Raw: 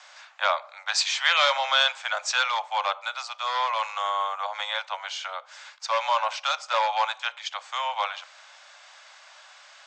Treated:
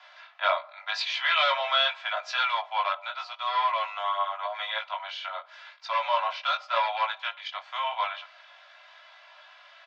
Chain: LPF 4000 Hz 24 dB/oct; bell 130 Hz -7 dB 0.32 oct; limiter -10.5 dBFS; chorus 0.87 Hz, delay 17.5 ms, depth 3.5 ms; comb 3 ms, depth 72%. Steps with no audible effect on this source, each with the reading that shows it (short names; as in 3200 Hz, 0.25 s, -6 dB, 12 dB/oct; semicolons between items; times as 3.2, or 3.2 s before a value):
bell 130 Hz: input band starts at 450 Hz